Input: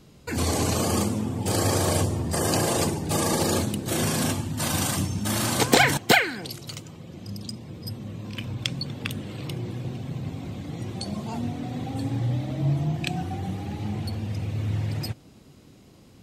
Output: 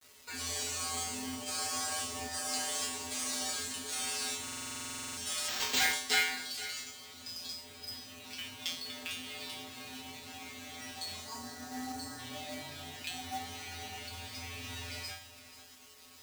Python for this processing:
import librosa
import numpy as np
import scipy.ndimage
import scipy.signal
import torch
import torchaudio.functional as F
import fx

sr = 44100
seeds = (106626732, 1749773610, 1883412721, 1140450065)

p1 = fx.weighting(x, sr, curve='ITU-R 468')
p2 = fx.spec_erase(p1, sr, start_s=11.24, length_s=0.94, low_hz=2000.0, high_hz=4000.0)
p3 = fx.high_shelf(p2, sr, hz=3300.0, db=-5.0)
p4 = fx.over_compress(p3, sr, threshold_db=-37.0, ratio=-1.0)
p5 = p3 + (p4 * librosa.db_to_amplitude(-1.0))
p6 = fx.comb_fb(p5, sr, f0_hz=85.0, decay_s=0.48, harmonics='odd', damping=0.0, mix_pct=100)
p7 = fx.quant_companded(p6, sr, bits=4)
p8 = p7 + 10.0 ** (-14.5 / 20.0) * np.pad(p7, (int(480 * sr / 1000.0), 0))[:len(p7)]
p9 = fx.resample_bad(p8, sr, factor=4, down='none', up='hold', at=(5.48, 5.93))
y = fx.buffer_glitch(p9, sr, at_s=(4.43,), block=2048, repeats=15)